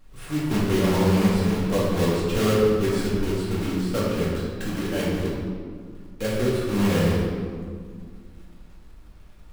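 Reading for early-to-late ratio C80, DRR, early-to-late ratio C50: 1.0 dB, -6.5 dB, -0.5 dB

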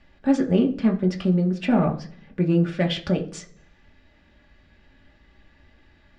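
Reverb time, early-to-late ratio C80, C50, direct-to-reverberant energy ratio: 0.50 s, 18.0 dB, 13.0 dB, 0.5 dB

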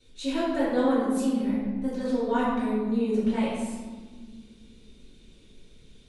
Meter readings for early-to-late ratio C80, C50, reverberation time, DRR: 1.5 dB, -1.0 dB, 1.6 s, -11.0 dB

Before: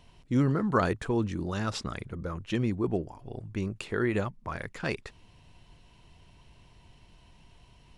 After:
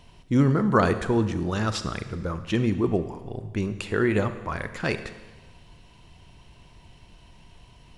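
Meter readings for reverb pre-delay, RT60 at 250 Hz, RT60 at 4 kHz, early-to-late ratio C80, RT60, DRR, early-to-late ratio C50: 30 ms, 1.3 s, 1.3 s, 13.5 dB, 1.3 s, 10.5 dB, 12.0 dB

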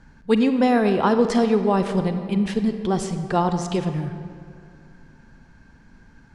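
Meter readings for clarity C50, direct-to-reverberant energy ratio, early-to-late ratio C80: 8.5 dB, 8.0 dB, 9.5 dB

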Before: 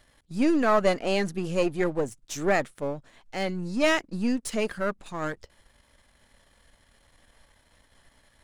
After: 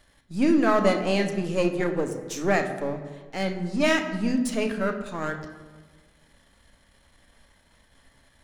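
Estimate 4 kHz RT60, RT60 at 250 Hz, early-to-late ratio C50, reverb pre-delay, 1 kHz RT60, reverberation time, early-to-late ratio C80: 1.0 s, 1.6 s, 8.5 dB, 3 ms, 1.3 s, 1.4 s, 10.0 dB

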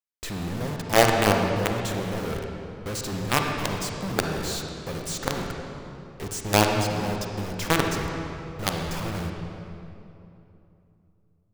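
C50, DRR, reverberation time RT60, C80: 2.5 dB, 2.0 dB, 2.9 s, 3.5 dB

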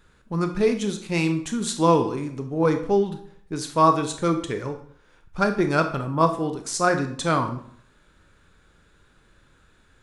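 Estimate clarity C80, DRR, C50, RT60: 13.5 dB, 6.0 dB, 10.0 dB, 0.60 s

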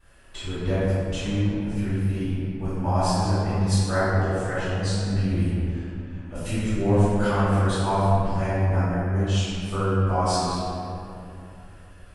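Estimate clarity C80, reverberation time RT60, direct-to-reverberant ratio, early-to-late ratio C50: -2.5 dB, 2.9 s, -17.5 dB, -5.5 dB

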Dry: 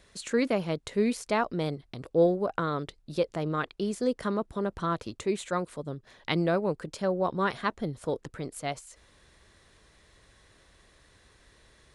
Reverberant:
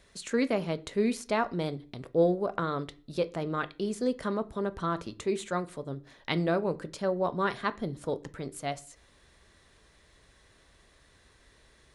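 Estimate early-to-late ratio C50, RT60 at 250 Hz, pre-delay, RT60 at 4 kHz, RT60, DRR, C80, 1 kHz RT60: 20.5 dB, 0.50 s, 3 ms, 0.45 s, 0.40 s, 11.5 dB, 26.0 dB, 0.40 s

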